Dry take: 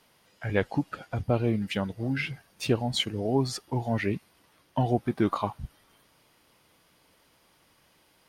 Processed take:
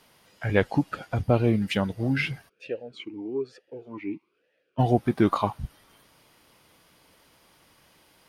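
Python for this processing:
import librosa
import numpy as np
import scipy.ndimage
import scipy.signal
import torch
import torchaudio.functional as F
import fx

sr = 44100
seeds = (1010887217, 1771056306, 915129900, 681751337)

y = fx.vowel_sweep(x, sr, vowels='e-u', hz=1.1, at=(2.48, 4.78), fade=0.02)
y = F.gain(torch.from_numpy(y), 4.0).numpy()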